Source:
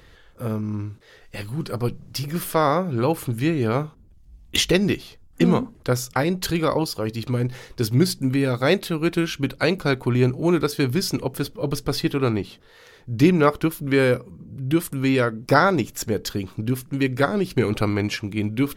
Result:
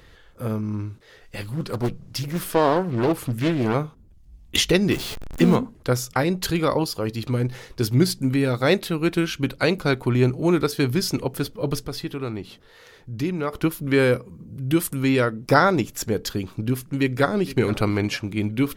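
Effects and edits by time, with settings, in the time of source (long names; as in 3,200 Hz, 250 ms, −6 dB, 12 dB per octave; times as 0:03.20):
0:01.43–0:03.74: highs frequency-modulated by the lows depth 0.61 ms
0:04.91–0:05.56: converter with a step at zero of −27.5 dBFS
0:11.85–0:13.53: downward compressor 1.5 to 1, threshold −38 dBFS
0:14.31–0:15.03: high-shelf EQ 4,700 Hz +5.5 dB
0:16.96–0:17.59: delay throw 460 ms, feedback 25%, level −16.5 dB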